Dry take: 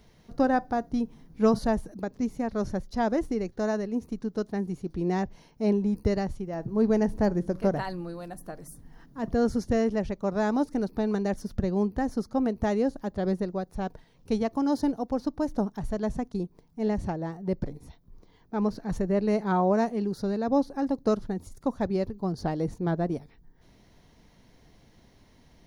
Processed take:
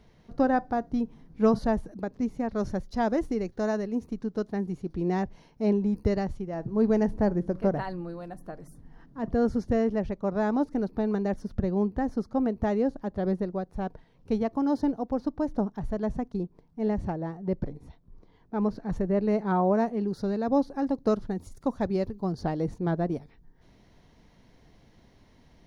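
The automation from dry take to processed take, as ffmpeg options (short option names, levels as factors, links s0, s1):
-af "asetnsamples=n=441:p=0,asendcmd='2.55 lowpass f 7100;4.05 lowpass f 4100;7.11 lowpass f 2100;20.08 lowpass f 4600;21.3 lowpass f 8900;22.35 lowpass f 4700',lowpass=f=3100:p=1"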